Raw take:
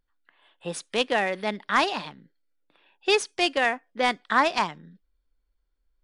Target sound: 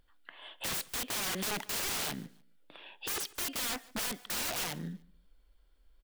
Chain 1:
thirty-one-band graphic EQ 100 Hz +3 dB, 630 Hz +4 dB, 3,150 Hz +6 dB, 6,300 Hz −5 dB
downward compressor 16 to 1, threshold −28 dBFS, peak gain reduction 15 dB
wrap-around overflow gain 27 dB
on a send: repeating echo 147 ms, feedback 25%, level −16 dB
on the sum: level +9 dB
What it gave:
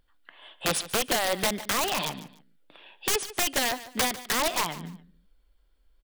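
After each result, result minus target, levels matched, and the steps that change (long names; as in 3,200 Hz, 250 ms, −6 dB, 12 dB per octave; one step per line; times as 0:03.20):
wrap-around overflow: distortion −19 dB; echo-to-direct +7 dB
change: wrap-around overflow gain 38.5 dB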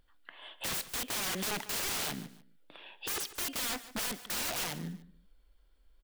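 echo-to-direct +7 dB
change: repeating echo 147 ms, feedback 25%, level −23 dB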